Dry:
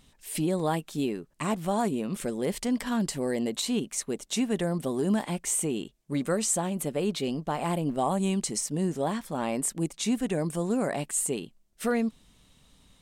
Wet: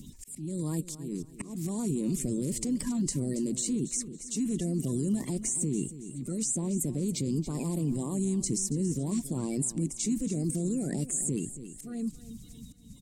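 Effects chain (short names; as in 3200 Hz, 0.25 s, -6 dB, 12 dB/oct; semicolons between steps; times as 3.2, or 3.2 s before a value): bin magnitudes rounded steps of 30 dB; in parallel at 0 dB: negative-ratio compressor -33 dBFS, ratio -0.5; on the sum: EQ curve 140 Hz 0 dB, 450 Hz -5 dB, 1500 Hz -24 dB, 2200 Hz -15 dB, 3200 Hz -19 dB, 7400 Hz -1 dB, 11000 Hz -8 dB; auto swell 0.381 s; band shelf 600 Hz -8.5 dB 1.3 oct; on a send: feedback echo 0.277 s, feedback 29%, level -15 dB; on the sum: three-band squash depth 40%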